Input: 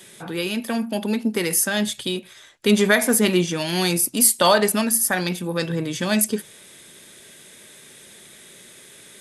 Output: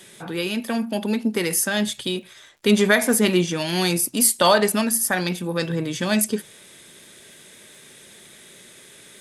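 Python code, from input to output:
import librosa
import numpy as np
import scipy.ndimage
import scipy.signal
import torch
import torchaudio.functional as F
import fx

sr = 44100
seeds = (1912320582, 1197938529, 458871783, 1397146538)

y = fx.high_shelf(x, sr, hz=11000.0, db=-4.5)
y = fx.dmg_crackle(y, sr, seeds[0], per_s=76.0, level_db=-47.0)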